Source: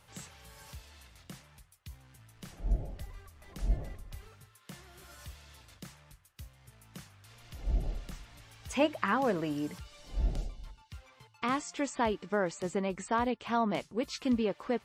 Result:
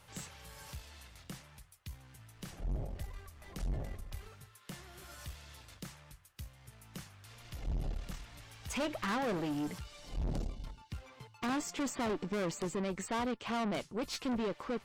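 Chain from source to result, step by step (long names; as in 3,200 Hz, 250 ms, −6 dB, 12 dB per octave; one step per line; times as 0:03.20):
0:10.24–0:12.65: parametric band 240 Hz +7.5 dB 2.5 octaves
tube saturation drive 35 dB, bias 0.5
level +3.5 dB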